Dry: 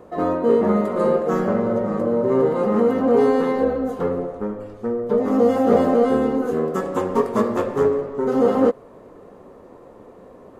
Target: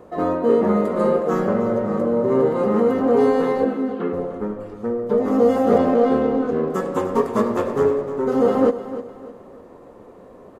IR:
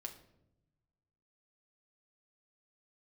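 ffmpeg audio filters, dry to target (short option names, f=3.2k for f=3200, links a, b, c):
-filter_complex "[0:a]asplit=3[a][b][c];[a]afade=t=out:st=3.64:d=0.02[d];[b]highpass=f=210:w=0.5412,highpass=f=210:w=1.3066,equalizer=f=210:t=q:w=4:g=9,equalizer=f=350:t=q:w=4:g=6,equalizer=f=510:t=q:w=4:g=-10,equalizer=f=880:t=q:w=4:g=-9,equalizer=f=2.8k:t=q:w=4:g=4,lowpass=f=3.7k:w=0.5412,lowpass=f=3.7k:w=1.3066,afade=t=in:st=3.64:d=0.02,afade=t=out:st=4.12:d=0.02[e];[c]afade=t=in:st=4.12:d=0.02[f];[d][e][f]amix=inputs=3:normalize=0,asettb=1/sr,asplit=3[g][h][i];[g]atrim=end=5.784[j];[h]atrim=start=5.78:end=6.7,asetpts=PTS-STARTPTS,afade=t=in:d=0.004:c=qsin,afade=t=out:st=0.916:d=0.004:c=qsin,adynamicsmooth=sensitivity=3:basefreq=2.6k[k];[i]atrim=start=6.696[l];[j][k]acrossfade=d=0.004:c1=hsin:c2=qsin[m];[m][l]acrossfade=d=0.004:c1=qsin:c2=hsin,aecho=1:1:304|608|912|1216:0.224|0.0806|0.029|0.0104"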